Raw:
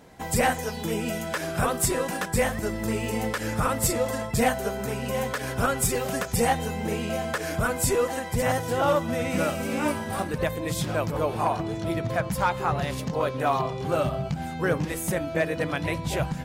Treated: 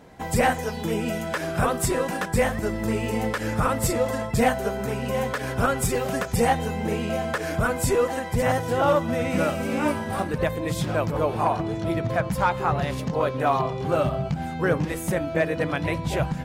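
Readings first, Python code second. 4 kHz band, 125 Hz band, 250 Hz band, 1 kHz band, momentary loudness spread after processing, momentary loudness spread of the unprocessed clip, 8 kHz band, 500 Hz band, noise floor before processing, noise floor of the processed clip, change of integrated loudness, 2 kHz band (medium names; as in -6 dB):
-0.5 dB, +2.5 dB, +2.5 dB, +2.0 dB, 5 LU, 5 LU, -3.0 dB, +2.5 dB, -34 dBFS, -32 dBFS, +2.0 dB, +1.5 dB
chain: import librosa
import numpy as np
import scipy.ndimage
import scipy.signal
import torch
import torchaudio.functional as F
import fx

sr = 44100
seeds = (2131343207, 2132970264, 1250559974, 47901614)

y = fx.high_shelf(x, sr, hz=3800.0, db=-6.5)
y = F.gain(torch.from_numpy(y), 2.5).numpy()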